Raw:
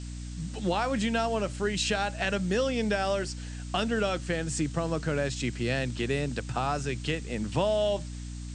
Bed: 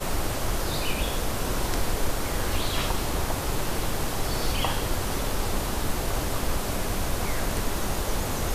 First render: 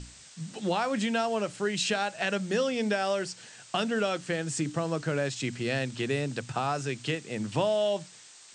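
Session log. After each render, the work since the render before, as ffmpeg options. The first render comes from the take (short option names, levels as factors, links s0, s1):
-af "bandreject=f=60:t=h:w=6,bandreject=f=120:t=h:w=6,bandreject=f=180:t=h:w=6,bandreject=f=240:t=h:w=6,bandreject=f=300:t=h:w=6"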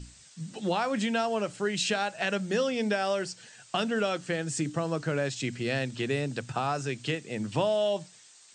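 -af "afftdn=nr=6:nf=-52"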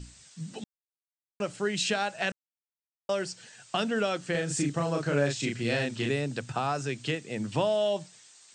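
-filter_complex "[0:a]asettb=1/sr,asplit=3[s0][s1][s2];[s0]atrim=end=4.314[s3];[s1]atrim=start=4.31:end=6.11,asetpts=PTS-STARTPTS,afade=t=in:d=0.004:c=qsin,afade=t=out:st=1.796:d=0.004:c=qsin,asplit=2[s4][s5];[s5]adelay=35,volume=0.75[s6];[s4][s6]amix=inputs=2:normalize=0,atrim=end_sample=79380[s7];[s2]atrim=start=6.106[s8];[s3][s7]acrossfade=d=0.004:c1=hsin:c2=qsin[s9];[s9][s8]acrossfade=d=0.004:c1=qsin:c2=hsin,asplit=5[s10][s11][s12][s13][s14];[s10]atrim=end=0.64,asetpts=PTS-STARTPTS,afade=t=out:st=0.636:d=0.004:c=hsin[s15];[s11]atrim=start=0.64:end=1.4,asetpts=PTS-STARTPTS,volume=0[s16];[s12]atrim=start=1.4:end=2.32,asetpts=PTS-STARTPTS,afade=t=in:d=0.004:c=hsin,afade=t=out:st=0.916:d=0.004:c=hsin[s17];[s13]atrim=start=2.32:end=3.09,asetpts=PTS-STARTPTS,volume=0[s18];[s14]atrim=start=3.09,asetpts=PTS-STARTPTS,afade=t=in:d=0.004:c=hsin[s19];[s15][s16][s17][s18][s19]concat=n=5:v=0:a=1"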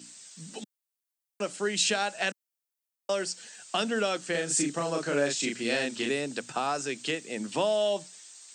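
-af "highpass=f=200:w=0.5412,highpass=f=200:w=1.3066,highshelf=f=6000:g=10.5"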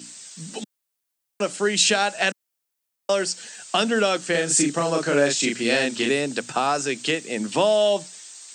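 -af "volume=2.37"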